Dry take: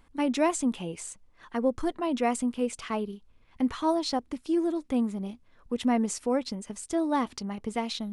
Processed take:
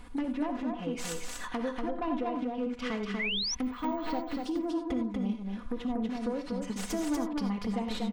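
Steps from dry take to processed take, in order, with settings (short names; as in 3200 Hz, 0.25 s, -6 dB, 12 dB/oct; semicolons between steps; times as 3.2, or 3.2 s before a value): tracing distortion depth 0.29 ms; treble ducked by the level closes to 940 Hz, closed at -21.5 dBFS; comb 4.1 ms, depth 73%; compressor 10:1, threshold -39 dBFS, peak gain reduction 22 dB; sine folder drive 5 dB, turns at -26.5 dBFS; 3.63–4.35 careless resampling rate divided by 2×, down filtered, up hold; on a send: echo 0.24 s -3.5 dB; on the sum: non-linear reverb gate 0.11 s rising, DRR 7 dB; 3.19–3.55 painted sound rise 1900–6200 Hz -32 dBFS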